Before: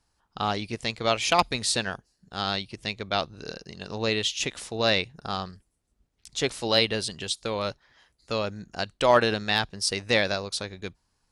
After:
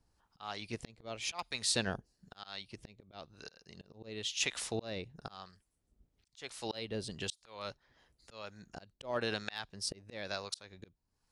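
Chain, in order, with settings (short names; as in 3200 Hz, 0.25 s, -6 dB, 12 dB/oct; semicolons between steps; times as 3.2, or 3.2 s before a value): harmonic tremolo 1 Hz, depth 70%, crossover 650 Hz; auto swell 0.637 s; gain +1 dB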